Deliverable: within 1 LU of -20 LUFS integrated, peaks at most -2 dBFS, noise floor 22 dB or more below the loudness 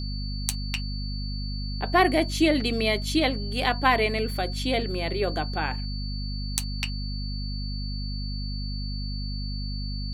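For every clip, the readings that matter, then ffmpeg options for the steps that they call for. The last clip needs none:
hum 50 Hz; highest harmonic 250 Hz; hum level -29 dBFS; steady tone 4.5 kHz; tone level -38 dBFS; loudness -27.5 LUFS; peak level -4.5 dBFS; loudness target -20.0 LUFS
-> -af "bandreject=f=50:t=h:w=4,bandreject=f=100:t=h:w=4,bandreject=f=150:t=h:w=4,bandreject=f=200:t=h:w=4,bandreject=f=250:t=h:w=4"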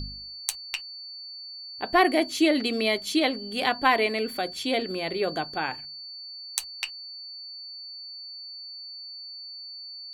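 hum not found; steady tone 4.5 kHz; tone level -38 dBFS
-> -af "bandreject=f=4500:w=30"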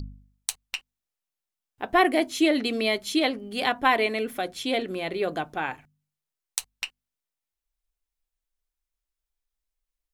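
steady tone not found; loudness -26.5 LUFS; peak level -5.0 dBFS; loudness target -20.0 LUFS
-> -af "volume=2.11,alimiter=limit=0.794:level=0:latency=1"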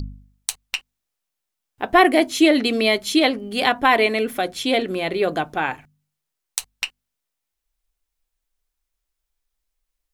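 loudness -20.0 LUFS; peak level -2.0 dBFS; noise floor -82 dBFS

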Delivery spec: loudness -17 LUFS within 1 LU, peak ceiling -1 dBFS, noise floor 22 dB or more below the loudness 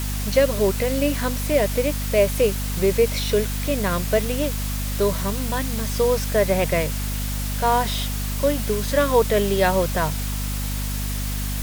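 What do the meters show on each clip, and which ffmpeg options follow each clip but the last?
hum 50 Hz; highest harmonic 250 Hz; hum level -24 dBFS; noise floor -26 dBFS; noise floor target -44 dBFS; loudness -22.0 LUFS; peak level -4.5 dBFS; loudness target -17.0 LUFS
-> -af "bandreject=f=50:t=h:w=4,bandreject=f=100:t=h:w=4,bandreject=f=150:t=h:w=4,bandreject=f=200:t=h:w=4,bandreject=f=250:t=h:w=4"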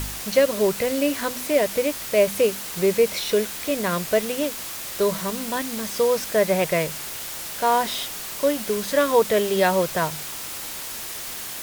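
hum not found; noise floor -33 dBFS; noise floor target -45 dBFS
-> -af "afftdn=nr=12:nf=-33"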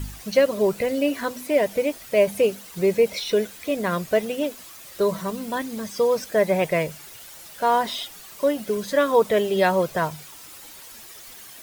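noise floor -43 dBFS; noise floor target -45 dBFS
-> -af "afftdn=nr=6:nf=-43"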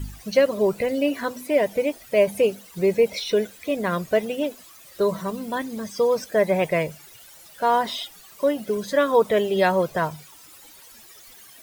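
noise floor -48 dBFS; loudness -23.0 LUFS; peak level -5.5 dBFS; loudness target -17.0 LUFS
-> -af "volume=2,alimiter=limit=0.891:level=0:latency=1"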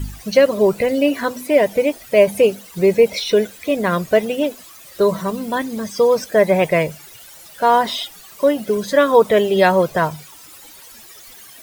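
loudness -17.0 LUFS; peak level -1.0 dBFS; noise floor -42 dBFS

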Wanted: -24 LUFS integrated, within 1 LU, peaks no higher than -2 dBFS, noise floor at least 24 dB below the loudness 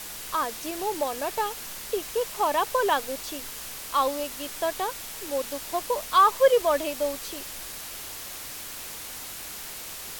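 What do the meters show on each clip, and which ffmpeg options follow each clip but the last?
noise floor -39 dBFS; noise floor target -52 dBFS; loudness -27.5 LUFS; peak level -7.5 dBFS; loudness target -24.0 LUFS
-> -af "afftdn=nr=13:nf=-39"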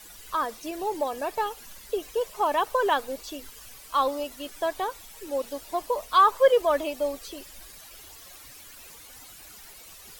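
noise floor -48 dBFS; noise floor target -51 dBFS
-> -af "afftdn=nr=6:nf=-48"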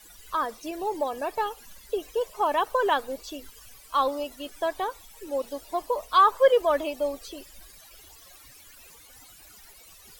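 noise floor -51 dBFS; loudness -26.5 LUFS; peak level -7.5 dBFS; loudness target -24.0 LUFS
-> -af "volume=1.33"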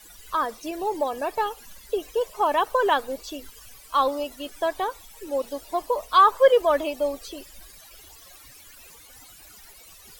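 loudness -24.0 LUFS; peak level -5.0 dBFS; noise floor -49 dBFS

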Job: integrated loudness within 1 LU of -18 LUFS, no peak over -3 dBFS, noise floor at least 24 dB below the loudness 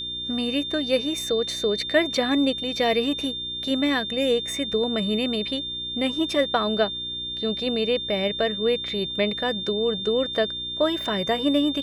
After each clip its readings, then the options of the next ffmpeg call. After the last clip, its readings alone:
hum 60 Hz; highest harmonic 360 Hz; hum level -44 dBFS; steady tone 3.6 kHz; tone level -29 dBFS; loudness -24.0 LUFS; peak level -8.0 dBFS; loudness target -18.0 LUFS
-> -af "bandreject=f=60:t=h:w=4,bandreject=f=120:t=h:w=4,bandreject=f=180:t=h:w=4,bandreject=f=240:t=h:w=4,bandreject=f=300:t=h:w=4,bandreject=f=360:t=h:w=4"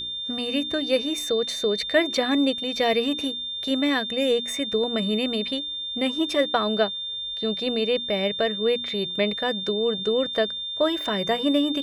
hum not found; steady tone 3.6 kHz; tone level -29 dBFS
-> -af "bandreject=f=3600:w=30"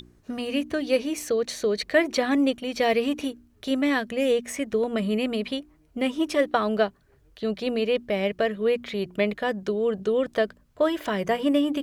steady tone not found; loudness -25.5 LUFS; peak level -8.5 dBFS; loudness target -18.0 LUFS
-> -af "volume=2.37,alimiter=limit=0.708:level=0:latency=1"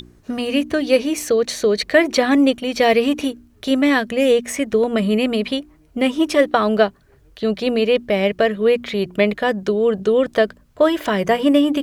loudness -18.0 LUFS; peak level -3.0 dBFS; noise floor -53 dBFS

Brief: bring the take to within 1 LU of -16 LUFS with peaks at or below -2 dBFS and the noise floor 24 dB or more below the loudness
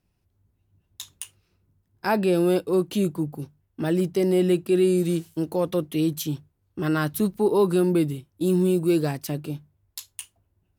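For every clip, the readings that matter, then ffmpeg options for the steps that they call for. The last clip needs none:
loudness -24.0 LUFS; peak level -10.5 dBFS; loudness target -16.0 LUFS
-> -af "volume=2.51"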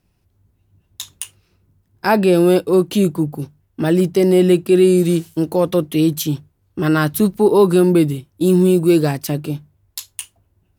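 loudness -16.0 LUFS; peak level -2.5 dBFS; noise floor -64 dBFS

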